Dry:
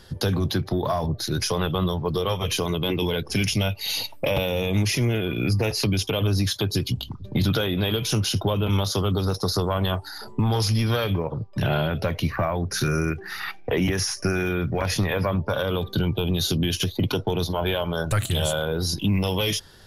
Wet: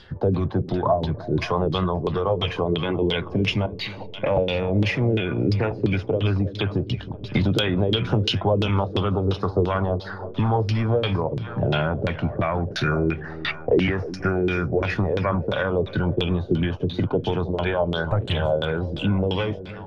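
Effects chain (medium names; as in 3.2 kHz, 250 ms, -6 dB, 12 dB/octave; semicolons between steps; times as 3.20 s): 3.66–4.10 s: compressor with a negative ratio -30 dBFS, ratio -0.5; 13.17–13.65 s: peaking EQ 8.1 kHz +10.5 dB 2 oct; two-band feedback delay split 580 Hz, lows 313 ms, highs 527 ms, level -14 dB; LFO low-pass saw down 2.9 Hz 320–3800 Hz; 7.34–8.29 s: three bands compressed up and down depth 100%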